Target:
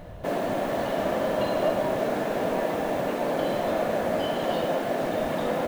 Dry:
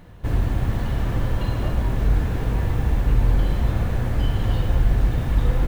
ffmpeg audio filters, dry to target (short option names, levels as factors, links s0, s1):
-af "afftfilt=real='re*lt(hypot(re,im),0.251)':imag='im*lt(hypot(re,im),0.251)':win_size=1024:overlap=0.75,equalizer=f=620:t=o:w=0.46:g=14.5,volume=1.26"